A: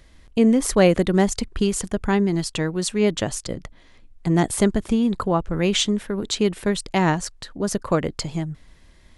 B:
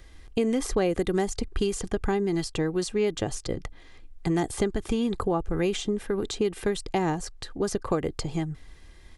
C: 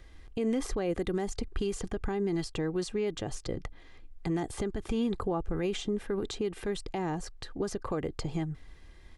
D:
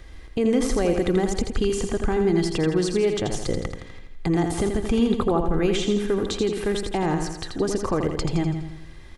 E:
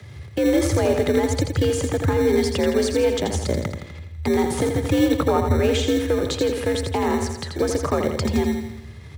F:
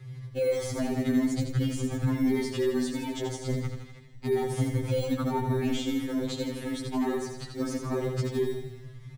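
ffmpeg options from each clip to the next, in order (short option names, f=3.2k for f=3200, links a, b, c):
-filter_complex "[0:a]aecho=1:1:2.5:0.4,acrossover=split=890|7100[a][b][c];[a]acompressor=threshold=-23dB:ratio=4[d];[b]acompressor=threshold=-37dB:ratio=4[e];[c]acompressor=threshold=-45dB:ratio=4[f];[d][e][f]amix=inputs=3:normalize=0"
-af "highshelf=f=5.3k:g=-7.5,alimiter=limit=-20dB:level=0:latency=1:release=54,volume=-2.5dB"
-af "aecho=1:1:83|166|249|332|415|498|581:0.501|0.266|0.141|0.0746|0.0395|0.021|0.0111,volume=8.5dB"
-filter_complex "[0:a]aeval=exprs='if(lt(val(0),0),0.708*val(0),val(0))':c=same,acrossover=split=270[a][b];[a]acrusher=samples=23:mix=1:aa=0.000001[c];[c][b]amix=inputs=2:normalize=0,afreqshift=68,volume=3.5dB"
-filter_complex "[0:a]bass=f=250:g=9,treble=f=4k:g=1,asplit=5[a][b][c][d][e];[b]adelay=160,afreqshift=-77,volume=-17.5dB[f];[c]adelay=320,afreqshift=-154,volume=-24.2dB[g];[d]adelay=480,afreqshift=-231,volume=-31dB[h];[e]adelay=640,afreqshift=-308,volume=-37.7dB[i];[a][f][g][h][i]amix=inputs=5:normalize=0,afftfilt=real='re*2.45*eq(mod(b,6),0)':imag='im*2.45*eq(mod(b,6),0)':win_size=2048:overlap=0.75,volume=-8.5dB"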